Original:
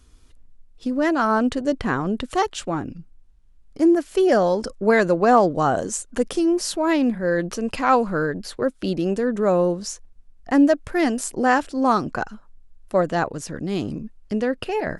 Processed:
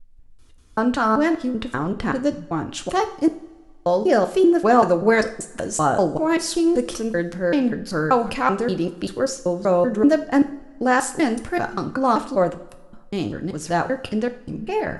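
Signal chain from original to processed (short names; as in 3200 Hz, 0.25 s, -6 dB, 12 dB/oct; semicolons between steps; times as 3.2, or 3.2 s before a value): slices in reverse order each 0.193 s, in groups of 4; two-slope reverb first 0.49 s, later 1.8 s, from -18 dB, DRR 7.5 dB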